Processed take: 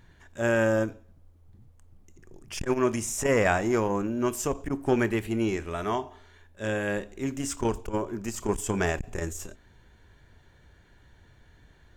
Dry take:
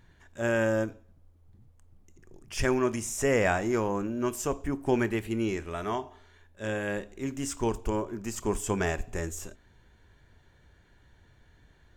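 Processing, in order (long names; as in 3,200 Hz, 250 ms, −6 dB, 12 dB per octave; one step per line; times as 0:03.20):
saturating transformer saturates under 320 Hz
level +3 dB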